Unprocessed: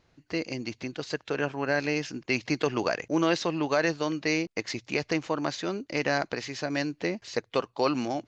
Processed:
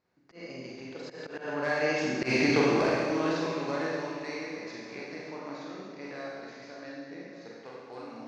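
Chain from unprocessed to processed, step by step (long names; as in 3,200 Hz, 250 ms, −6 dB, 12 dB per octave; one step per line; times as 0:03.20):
wavefolder on the positive side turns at −21 dBFS
source passing by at 0:02.31, 12 m/s, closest 3.2 metres
high-pass filter 160 Hz 6 dB per octave
parametric band 3,000 Hz −7.5 dB 0.46 octaves
mains-hum notches 50/100/150/200/250/300/350 Hz
in parallel at −3 dB: downward compressor, threshold −53 dBFS, peak gain reduction 25.5 dB
on the sum: four-comb reverb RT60 1.7 s, combs from 31 ms, DRR −5 dB
volume swells 113 ms
high-frequency loss of the air 90 metres
on a send: echo with a time of its own for lows and highs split 320 Hz, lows 216 ms, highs 581 ms, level −15.5 dB
on the sum: level +3 dB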